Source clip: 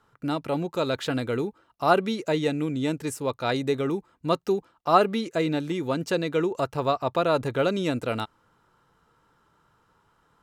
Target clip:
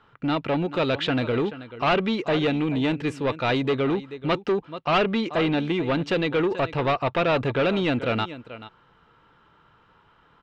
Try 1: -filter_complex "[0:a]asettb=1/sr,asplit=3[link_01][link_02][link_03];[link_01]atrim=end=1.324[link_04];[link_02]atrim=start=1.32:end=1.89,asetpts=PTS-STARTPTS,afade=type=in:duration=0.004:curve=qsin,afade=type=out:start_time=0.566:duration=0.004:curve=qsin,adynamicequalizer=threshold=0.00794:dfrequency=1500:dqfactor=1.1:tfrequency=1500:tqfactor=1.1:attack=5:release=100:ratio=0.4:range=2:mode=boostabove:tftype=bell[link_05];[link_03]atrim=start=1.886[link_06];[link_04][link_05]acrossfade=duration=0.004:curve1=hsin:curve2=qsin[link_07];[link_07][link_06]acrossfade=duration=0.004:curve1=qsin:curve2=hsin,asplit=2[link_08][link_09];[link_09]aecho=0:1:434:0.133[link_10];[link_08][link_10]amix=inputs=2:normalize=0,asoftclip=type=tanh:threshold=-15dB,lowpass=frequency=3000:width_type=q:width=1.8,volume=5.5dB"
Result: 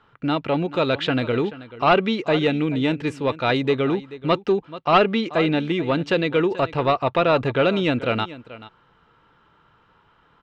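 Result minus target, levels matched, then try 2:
soft clipping: distortion −7 dB
-filter_complex "[0:a]asettb=1/sr,asplit=3[link_01][link_02][link_03];[link_01]atrim=end=1.324[link_04];[link_02]atrim=start=1.32:end=1.89,asetpts=PTS-STARTPTS,afade=type=in:duration=0.004:curve=qsin,afade=type=out:start_time=0.566:duration=0.004:curve=qsin,adynamicequalizer=threshold=0.00794:dfrequency=1500:dqfactor=1.1:tfrequency=1500:tqfactor=1.1:attack=5:release=100:ratio=0.4:range=2:mode=boostabove:tftype=bell[link_05];[link_03]atrim=start=1.886[link_06];[link_04][link_05]acrossfade=duration=0.004:curve1=hsin:curve2=qsin[link_07];[link_07][link_06]acrossfade=duration=0.004:curve1=qsin:curve2=hsin,asplit=2[link_08][link_09];[link_09]aecho=0:1:434:0.133[link_10];[link_08][link_10]amix=inputs=2:normalize=0,asoftclip=type=tanh:threshold=-23.5dB,lowpass=frequency=3000:width_type=q:width=1.8,volume=5.5dB"

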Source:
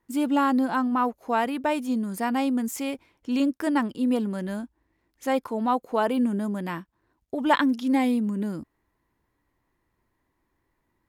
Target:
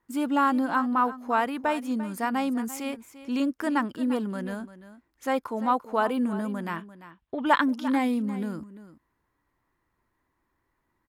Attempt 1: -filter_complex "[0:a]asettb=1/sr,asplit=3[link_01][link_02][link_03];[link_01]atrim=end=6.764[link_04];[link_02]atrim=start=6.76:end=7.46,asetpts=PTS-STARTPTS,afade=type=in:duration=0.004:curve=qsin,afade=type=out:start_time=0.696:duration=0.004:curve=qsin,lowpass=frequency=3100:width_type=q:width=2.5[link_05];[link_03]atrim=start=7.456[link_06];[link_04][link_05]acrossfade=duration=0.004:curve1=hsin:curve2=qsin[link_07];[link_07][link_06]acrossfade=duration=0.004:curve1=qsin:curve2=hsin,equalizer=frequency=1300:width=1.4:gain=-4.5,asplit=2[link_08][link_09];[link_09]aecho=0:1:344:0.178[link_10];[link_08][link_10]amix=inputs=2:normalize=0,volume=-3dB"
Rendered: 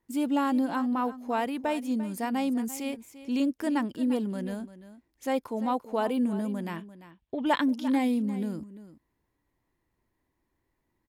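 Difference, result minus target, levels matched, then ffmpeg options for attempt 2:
1,000 Hz band −3.5 dB
-filter_complex "[0:a]asettb=1/sr,asplit=3[link_01][link_02][link_03];[link_01]atrim=end=6.764[link_04];[link_02]atrim=start=6.76:end=7.46,asetpts=PTS-STARTPTS,afade=type=in:duration=0.004:curve=qsin,afade=type=out:start_time=0.696:duration=0.004:curve=qsin,lowpass=frequency=3100:width_type=q:width=2.5[link_05];[link_03]atrim=start=7.456[link_06];[link_04][link_05]acrossfade=duration=0.004:curve1=hsin:curve2=qsin[link_07];[link_07][link_06]acrossfade=duration=0.004:curve1=qsin:curve2=hsin,equalizer=frequency=1300:width=1.4:gain=6,asplit=2[link_08][link_09];[link_09]aecho=0:1:344:0.178[link_10];[link_08][link_10]amix=inputs=2:normalize=0,volume=-3dB"

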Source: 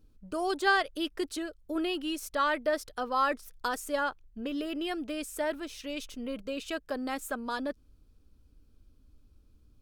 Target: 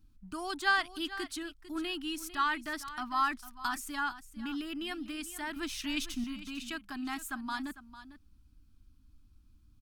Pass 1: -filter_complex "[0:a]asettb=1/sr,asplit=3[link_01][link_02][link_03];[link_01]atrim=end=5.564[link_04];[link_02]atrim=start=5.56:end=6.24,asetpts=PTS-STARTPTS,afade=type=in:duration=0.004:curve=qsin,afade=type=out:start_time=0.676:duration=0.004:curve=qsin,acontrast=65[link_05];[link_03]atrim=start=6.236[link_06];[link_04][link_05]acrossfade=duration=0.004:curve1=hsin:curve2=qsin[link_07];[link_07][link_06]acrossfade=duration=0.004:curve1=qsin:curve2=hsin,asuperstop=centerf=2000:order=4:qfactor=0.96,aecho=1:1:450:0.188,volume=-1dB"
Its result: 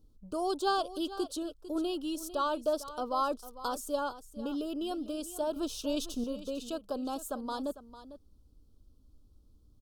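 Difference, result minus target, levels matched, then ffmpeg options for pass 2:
2,000 Hz band −13.5 dB
-filter_complex "[0:a]asettb=1/sr,asplit=3[link_01][link_02][link_03];[link_01]atrim=end=5.564[link_04];[link_02]atrim=start=5.56:end=6.24,asetpts=PTS-STARTPTS,afade=type=in:duration=0.004:curve=qsin,afade=type=out:start_time=0.676:duration=0.004:curve=qsin,acontrast=65[link_05];[link_03]atrim=start=6.236[link_06];[link_04][link_05]acrossfade=duration=0.004:curve1=hsin:curve2=qsin[link_07];[link_07][link_06]acrossfade=duration=0.004:curve1=qsin:curve2=hsin,asuperstop=centerf=510:order=4:qfactor=0.96,aecho=1:1:450:0.188,volume=-1dB"

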